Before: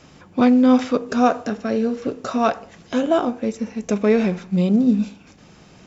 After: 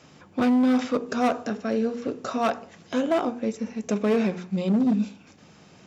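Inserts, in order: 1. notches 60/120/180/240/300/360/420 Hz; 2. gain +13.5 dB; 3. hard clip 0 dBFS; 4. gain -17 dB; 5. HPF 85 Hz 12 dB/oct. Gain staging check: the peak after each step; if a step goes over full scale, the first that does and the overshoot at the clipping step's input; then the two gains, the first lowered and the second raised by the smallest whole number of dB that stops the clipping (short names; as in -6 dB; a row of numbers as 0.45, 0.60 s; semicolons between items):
-4.0, +9.5, 0.0, -17.0, -13.0 dBFS; step 2, 9.5 dB; step 2 +3.5 dB, step 4 -7 dB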